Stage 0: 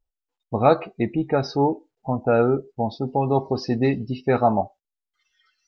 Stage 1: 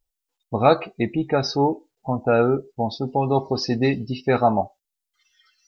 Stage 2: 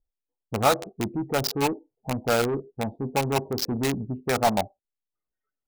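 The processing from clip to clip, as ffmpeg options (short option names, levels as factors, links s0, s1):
-af "highshelf=f=3000:g=10.5"
-filter_complex "[0:a]acrossover=split=750[s0][s1];[s0]asoftclip=type=tanh:threshold=0.0841[s2];[s1]acrusher=bits=3:mix=0:aa=0.000001[s3];[s2][s3]amix=inputs=2:normalize=0,volume=0.891"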